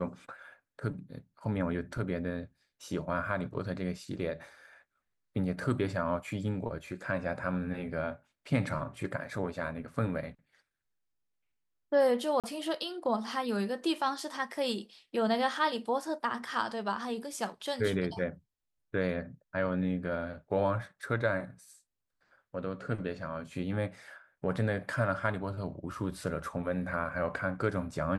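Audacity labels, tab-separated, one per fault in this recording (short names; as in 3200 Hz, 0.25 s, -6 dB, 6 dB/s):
12.400000	12.440000	gap 37 ms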